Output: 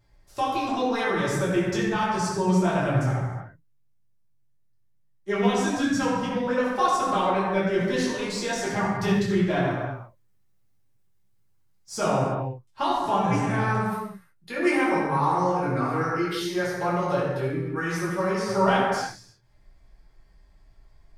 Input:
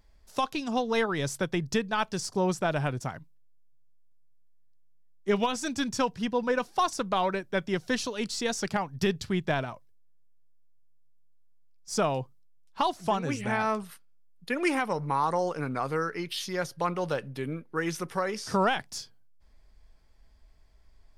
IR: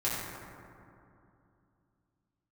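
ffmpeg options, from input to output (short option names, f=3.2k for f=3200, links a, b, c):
-filter_complex "[0:a]asettb=1/sr,asplit=3[a][b][c];[a]atrim=end=9.714[d];[b]atrim=start=9.71:end=11.98,asetpts=PTS-STARTPTS,afade=t=in:d=0.004:c=qsin,afade=t=out:st=2.266:d=0.004:c=qsin,acrusher=bits=8:mode=log:mix=0:aa=0.000001[e];[c]atrim=start=11.976[f];[d][e]acrossfade=d=0.004:c1=hsin:c2=qsin[g];[g][f]acrossfade=d=0.004:c1=qsin:c2=hsin,flanger=delay=7.2:depth=3.1:regen=-37:speed=1.4:shape=sinusoidal[h];[1:a]atrim=start_sample=2205,afade=t=out:st=0.42:d=0.01,atrim=end_sample=18963[i];[h][i]afir=irnorm=-1:irlink=0"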